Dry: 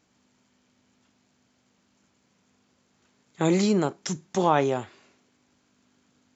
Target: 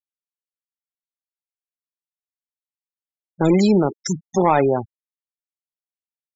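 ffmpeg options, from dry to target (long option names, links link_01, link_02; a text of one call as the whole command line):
ffmpeg -i in.wav -af "aeval=exprs='0.447*(cos(1*acos(clip(val(0)/0.447,-1,1)))-cos(1*PI/2))+0.0631*(cos(5*acos(clip(val(0)/0.447,-1,1)))-cos(5*PI/2))+0.00891*(cos(6*acos(clip(val(0)/0.447,-1,1)))-cos(6*PI/2))':channel_layout=same,aeval=exprs='val(0)+0.00501*sin(2*PI*5300*n/s)':channel_layout=same,afftfilt=real='re*gte(hypot(re,im),0.0708)':imag='im*gte(hypot(re,im),0.0708)':win_size=1024:overlap=0.75,volume=3.5dB" out.wav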